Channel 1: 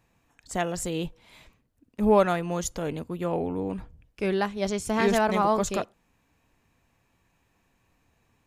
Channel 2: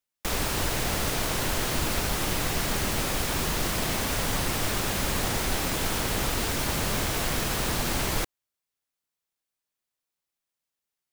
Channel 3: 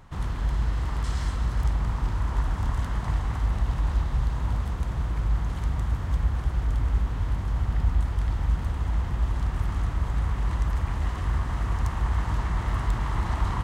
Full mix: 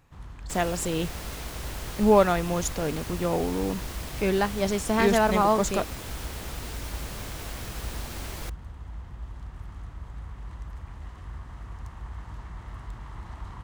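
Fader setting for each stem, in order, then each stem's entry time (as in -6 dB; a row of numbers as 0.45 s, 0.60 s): +1.5 dB, -11.0 dB, -13.5 dB; 0.00 s, 0.25 s, 0.00 s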